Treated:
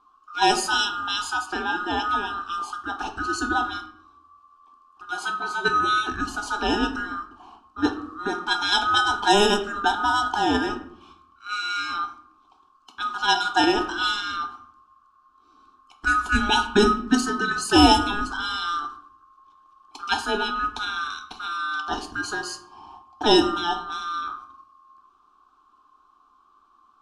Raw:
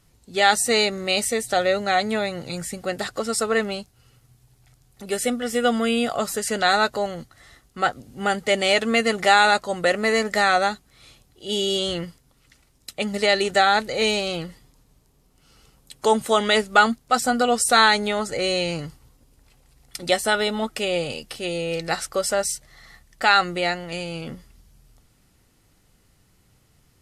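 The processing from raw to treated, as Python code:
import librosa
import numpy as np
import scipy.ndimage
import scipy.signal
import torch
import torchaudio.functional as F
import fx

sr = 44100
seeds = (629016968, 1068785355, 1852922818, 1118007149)

p1 = fx.band_swap(x, sr, width_hz=1000)
p2 = fx.level_steps(p1, sr, step_db=17)
p3 = p1 + F.gain(torch.from_numpy(p2), -1.5).numpy()
p4 = fx.fixed_phaser(p3, sr, hz=520.0, stages=6)
p5 = fx.room_shoebox(p4, sr, seeds[0], volume_m3=120.0, walls='mixed', distance_m=0.42)
y = fx.env_lowpass(p5, sr, base_hz=2300.0, full_db=-9.5)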